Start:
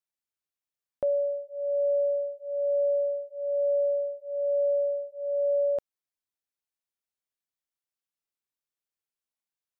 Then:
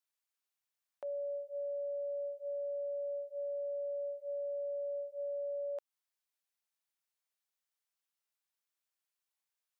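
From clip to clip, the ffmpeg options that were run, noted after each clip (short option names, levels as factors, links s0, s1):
-af "highpass=650,acompressor=threshold=0.0126:ratio=4,alimiter=level_in=4.47:limit=0.0631:level=0:latency=1,volume=0.224,volume=1.26"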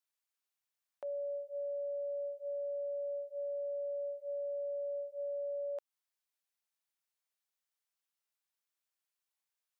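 -af anull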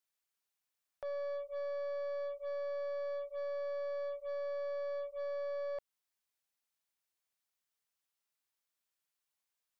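-af "aeval=exprs='0.0188*(cos(1*acos(clip(val(0)/0.0188,-1,1)))-cos(1*PI/2))+0.00473*(cos(2*acos(clip(val(0)/0.0188,-1,1)))-cos(2*PI/2))+0.000133*(cos(7*acos(clip(val(0)/0.0188,-1,1)))-cos(7*PI/2))+0.00075*(cos(8*acos(clip(val(0)/0.0188,-1,1)))-cos(8*PI/2))':c=same,asoftclip=type=tanh:threshold=0.0188,volume=1.19"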